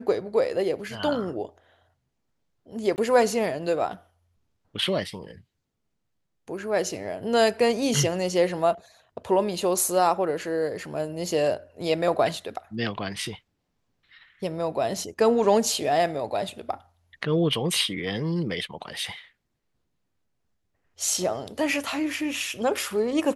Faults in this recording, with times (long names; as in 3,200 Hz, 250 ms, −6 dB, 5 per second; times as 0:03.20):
0:02.96–0:02.98: drop-out 19 ms